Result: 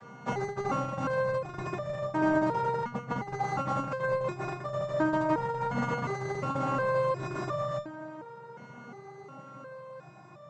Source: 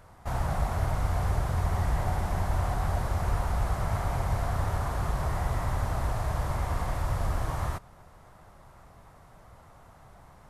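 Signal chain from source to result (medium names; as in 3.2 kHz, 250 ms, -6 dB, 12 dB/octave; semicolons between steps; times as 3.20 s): vocoder on a held chord minor triad, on C3; 2.84–3.33 s: tone controls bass +6 dB, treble -3 dB; compressor with a negative ratio -36 dBFS, ratio -0.5; loudness maximiser +27.5 dB; resonator arpeggio 2.8 Hz 240–600 Hz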